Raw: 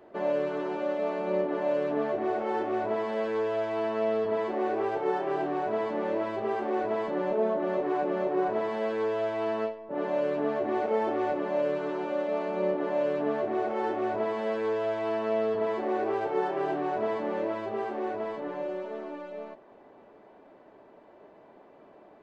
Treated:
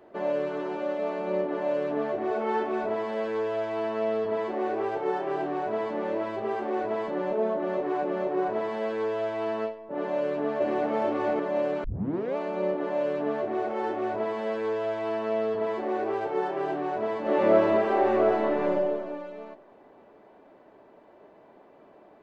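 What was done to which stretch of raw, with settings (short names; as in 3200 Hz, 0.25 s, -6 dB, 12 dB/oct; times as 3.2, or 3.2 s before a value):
2.31–2.89 comb 4.6 ms
10.16–10.95 echo throw 0.44 s, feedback 40%, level -2 dB
11.84 tape start 0.52 s
17.21–18.71 reverb throw, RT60 1.4 s, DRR -8.5 dB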